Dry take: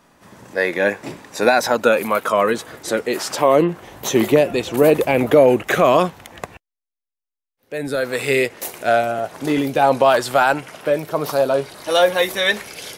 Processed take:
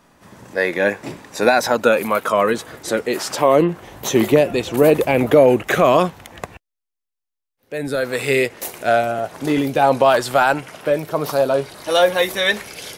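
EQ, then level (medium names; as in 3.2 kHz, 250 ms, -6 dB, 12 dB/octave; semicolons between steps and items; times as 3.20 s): bass shelf 130 Hz +4 dB; 0.0 dB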